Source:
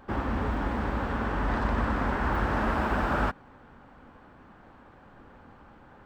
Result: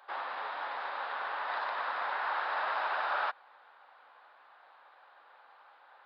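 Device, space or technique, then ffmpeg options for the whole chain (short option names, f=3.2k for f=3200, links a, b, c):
musical greeting card: -af "aresample=11025,aresample=44100,highpass=f=670:w=0.5412,highpass=f=670:w=1.3066,equalizer=f=3.8k:t=o:w=0.24:g=8,volume=-2dB"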